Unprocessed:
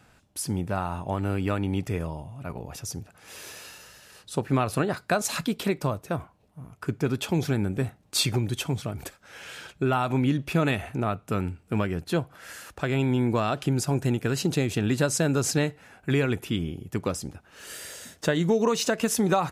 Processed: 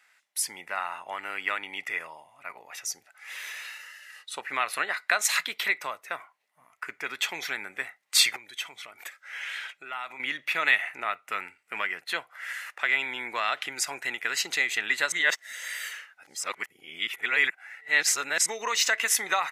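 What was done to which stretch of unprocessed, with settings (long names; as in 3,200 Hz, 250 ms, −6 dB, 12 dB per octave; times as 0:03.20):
0:08.36–0:10.20: downward compressor 2 to 1, threshold −37 dBFS
0:15.12–0:18.46: reverse
whole clip: noise reduction from a noise print of the clip's start 8 dB; high-pass filter 1,300 Hz 12 dB per octave; parametric band 2,000 Hz +13.5 dB 0.29 octaves; level +4.5 dB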